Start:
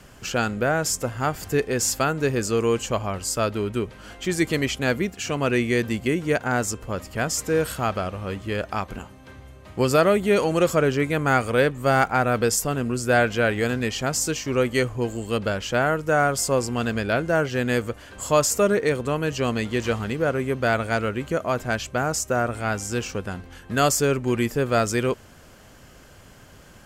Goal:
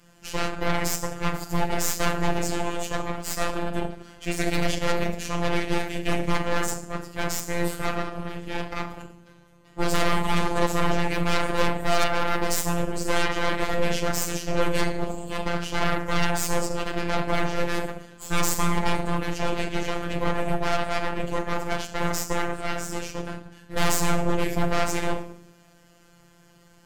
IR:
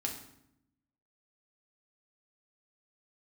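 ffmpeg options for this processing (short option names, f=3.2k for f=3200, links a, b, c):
-filter_complex "[1:a]atrim=start_sample=2205[a];[0:a][a]afir=irnorm=-1:irlink=0,aeval=exprs='0.668*(cos(1*acos(clip(val(0)/0.668,-1,1)))-cos(1*PI/2))+0.0335*(cos(5*acos(clip(val(0)/0.668,-1,1)))-cos(5*PI/2))+0.266*(cos(8*acos(clip(val(0)/0.668,-1,1)))-cos(8*PI/2))':c=same,afftfilt=real='hypot(re,im)*cos(PI*b)':imag='0':win_size=1024:overlap=0.75,volume=-7.5dB"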